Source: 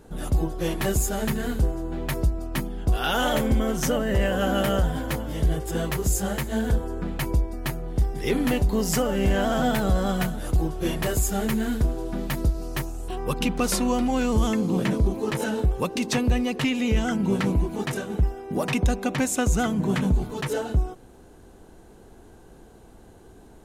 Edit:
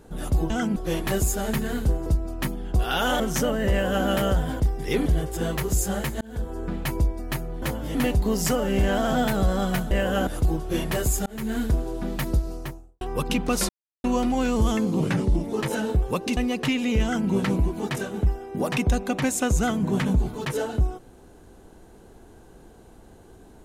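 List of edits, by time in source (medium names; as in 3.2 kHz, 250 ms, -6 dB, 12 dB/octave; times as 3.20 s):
1.80–2.19 s: delete
3.33–3.67 s: delete
4.17–4.53 s: copy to 10.38 s
5.07–5.40 s: swap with 7.96–8.42 s
6.55–6.97 s: fade in
11.37–11.68 s: fade in
12.52–13.12 s: studio fade out
13.80 s: insert silence 0.35 s
14.76–15.22 s: speed 87%
16.06–16.33 s: delete
16.99–17.25 s: copy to 0.50 s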